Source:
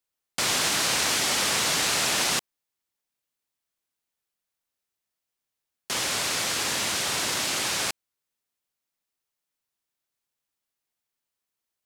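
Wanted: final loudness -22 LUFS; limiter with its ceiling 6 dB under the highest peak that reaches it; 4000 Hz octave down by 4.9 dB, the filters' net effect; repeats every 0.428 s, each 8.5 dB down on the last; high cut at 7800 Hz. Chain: LPF 7800 Hz; bell 4000 Hz -6 dB; limiter -21 dBFS; feedback echo 0.428 s, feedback 38%, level -8.5 dB; gain +7.5 dB

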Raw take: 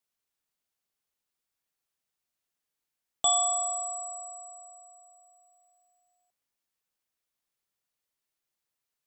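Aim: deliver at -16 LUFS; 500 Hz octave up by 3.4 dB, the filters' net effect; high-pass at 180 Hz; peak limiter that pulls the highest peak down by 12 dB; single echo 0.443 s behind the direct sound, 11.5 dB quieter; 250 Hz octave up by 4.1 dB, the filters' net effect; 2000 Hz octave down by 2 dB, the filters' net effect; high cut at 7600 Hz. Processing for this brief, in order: HPF 180 Hz; LPF 7600 Hz; bell 250 Hz +4 dB; bell 500 Hz +7 dB; bell 2000 Hz -3.5 dB; limiter -25 dBFS; echo 0.443 s -11.5 dB; gain +17.5 dB

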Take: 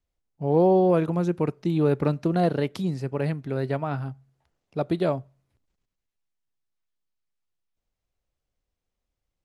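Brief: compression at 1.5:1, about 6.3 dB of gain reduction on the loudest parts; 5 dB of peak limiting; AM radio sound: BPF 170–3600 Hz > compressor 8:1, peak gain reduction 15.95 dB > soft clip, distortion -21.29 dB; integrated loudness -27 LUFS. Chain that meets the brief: compressor 1.5:1, threshold -33 dBFS; limiter -20 dBFS; BPF 170–3600 Hz; compressor 8:1, threshold -41 dBFS; soft clip -34.5 dBFS; gain +20 dB

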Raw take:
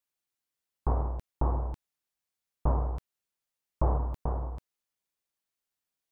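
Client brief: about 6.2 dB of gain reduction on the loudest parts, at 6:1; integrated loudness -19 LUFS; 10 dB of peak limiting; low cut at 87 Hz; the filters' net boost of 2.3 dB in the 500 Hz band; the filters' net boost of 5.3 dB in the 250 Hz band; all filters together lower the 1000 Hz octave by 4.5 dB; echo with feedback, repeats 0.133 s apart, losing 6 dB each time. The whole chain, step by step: HPF 87 Hz; bell 250 Hz +7 dB; bell 500 Hz +3 dB; bell 1000 Hz -7.5 dB; compressor 6:1, threshold -31 dBFS; limiter -30 dBFS; feedback echo 0.133 s, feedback 50%, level -6 dB; gain +22.5 dB

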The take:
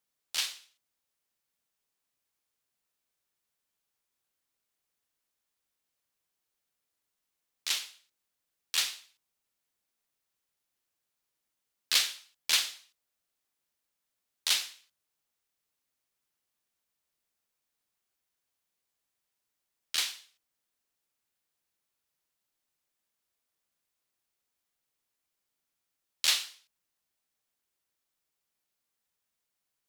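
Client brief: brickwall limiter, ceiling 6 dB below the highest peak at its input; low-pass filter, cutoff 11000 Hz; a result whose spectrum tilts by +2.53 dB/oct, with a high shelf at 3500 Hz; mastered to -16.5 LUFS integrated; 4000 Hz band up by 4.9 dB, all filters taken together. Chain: LPF 11000 Hz; high shelf 3500 Hz +3 dB; bell 4000 Hz +4 dB; gain +11.5 dB; limiter -0.5 dBFS

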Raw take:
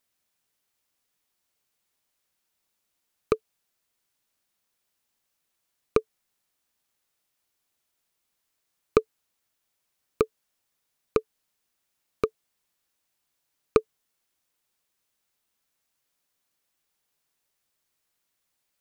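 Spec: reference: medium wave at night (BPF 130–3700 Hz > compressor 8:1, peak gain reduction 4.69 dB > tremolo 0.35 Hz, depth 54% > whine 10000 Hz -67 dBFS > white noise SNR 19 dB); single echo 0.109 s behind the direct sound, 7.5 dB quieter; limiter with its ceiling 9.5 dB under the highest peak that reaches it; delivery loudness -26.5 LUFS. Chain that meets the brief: limiter -14.5 dBFS; BPF 130–3700 Hz; echo 0.109 s -7.5 dB; compressor 8:1, threshold -26 dBFS; tremolo 0.35 Hz, depth 54%; whine 10000 Hz -67 dBFS; white noise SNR 19 dB; gain +14.5 dB

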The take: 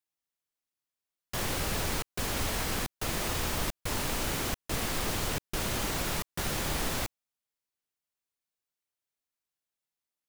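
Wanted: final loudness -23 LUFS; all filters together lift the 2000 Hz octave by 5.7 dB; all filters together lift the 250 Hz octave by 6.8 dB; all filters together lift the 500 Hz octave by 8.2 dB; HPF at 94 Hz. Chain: HPF 94 Hz; bell 250 Hz +6.5 dB; bell 500 Hz +8 dB; bell 2000 Hz +6.5 dB; gain +5.5 dB

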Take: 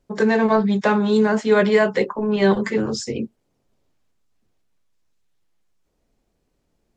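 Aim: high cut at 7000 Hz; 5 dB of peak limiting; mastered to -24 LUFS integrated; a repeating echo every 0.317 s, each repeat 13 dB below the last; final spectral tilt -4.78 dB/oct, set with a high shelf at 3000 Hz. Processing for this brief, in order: LPF 7000 Hz; high shelf 3000 Hz +3.5 dB; limiter -10 dBFS; feedback echo 0.317 s, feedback 22%, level -13 dB; gain -4 dB

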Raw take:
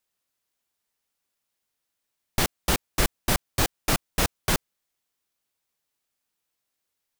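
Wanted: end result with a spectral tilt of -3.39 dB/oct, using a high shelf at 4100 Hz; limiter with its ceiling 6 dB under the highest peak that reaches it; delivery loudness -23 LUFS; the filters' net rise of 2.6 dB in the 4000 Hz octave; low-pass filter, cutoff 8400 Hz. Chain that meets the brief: LPF 8400 Hz; bell 4000 Hz +7.5 dB; high shelf 4100 Hz -7 dB; gain +7 dB; limiter -8 dBFS

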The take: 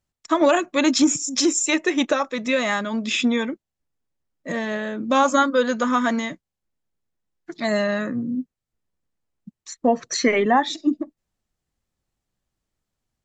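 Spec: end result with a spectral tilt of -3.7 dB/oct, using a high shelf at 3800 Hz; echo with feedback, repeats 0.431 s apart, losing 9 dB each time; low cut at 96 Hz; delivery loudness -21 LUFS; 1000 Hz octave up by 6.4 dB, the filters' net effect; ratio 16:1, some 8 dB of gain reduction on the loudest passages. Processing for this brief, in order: HPF 96 Hz; bell 1000 Hz +9 dB; high shelf 3800 Hz -8 dB; compressor 16:1, threshold -15 dBFS; feedback echo 0.431 s, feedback 35%, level -9 dB; gain +2 dB

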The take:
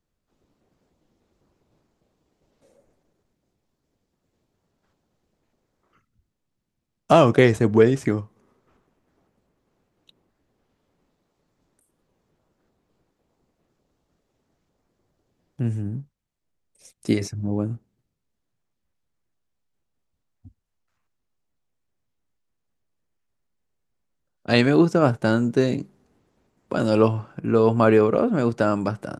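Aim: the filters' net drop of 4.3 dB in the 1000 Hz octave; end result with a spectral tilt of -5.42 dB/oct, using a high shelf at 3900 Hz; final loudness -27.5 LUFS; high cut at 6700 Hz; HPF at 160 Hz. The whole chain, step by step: HPF 160 Hz; LPF 6700 Hz; bell 1000 Hz -6.5 dB; high shelf 3900 Hz +3.5 dB; gain -5.5 dB

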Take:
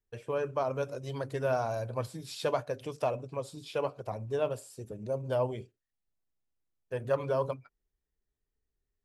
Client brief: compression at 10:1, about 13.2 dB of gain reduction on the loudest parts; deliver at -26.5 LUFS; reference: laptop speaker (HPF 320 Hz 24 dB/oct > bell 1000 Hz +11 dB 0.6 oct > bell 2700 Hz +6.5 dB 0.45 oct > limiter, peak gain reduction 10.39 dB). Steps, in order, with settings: compressor 10:1, threshold -38 dBFS; HPF 320 Hz 24 dB/oct; bell 1000 Hz +11 dB 0.6 oct; bell 2700 Hz +6.5 dB 0.45 oct; gain +18.5 dB; limiter -14.5 dBFS

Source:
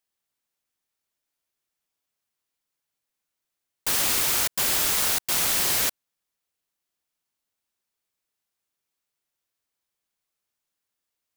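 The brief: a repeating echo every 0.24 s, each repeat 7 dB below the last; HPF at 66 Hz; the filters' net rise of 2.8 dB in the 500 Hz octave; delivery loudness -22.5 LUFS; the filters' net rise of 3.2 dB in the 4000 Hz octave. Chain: HPF 66 Hz; bell 500 Hz +3.5 dB; bell 4000 Hz +4 dB; feedback echo 0.24 s, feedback 45%, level -7 dB; gain -2.5 dB

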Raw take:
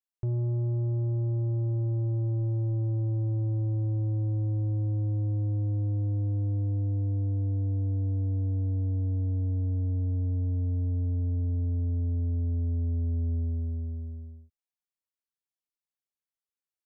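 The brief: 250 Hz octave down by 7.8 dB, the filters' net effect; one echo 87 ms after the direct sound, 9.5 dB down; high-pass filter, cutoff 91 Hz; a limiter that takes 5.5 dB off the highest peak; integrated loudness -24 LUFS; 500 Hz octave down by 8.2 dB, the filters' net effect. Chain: HPF 91 Hz; bell 250 Hz -7.5 dB; bell 500 Hz -8 dB; limiter -32.5 dBFS; echo 87 ms -9.5 dB; gain +14 dB

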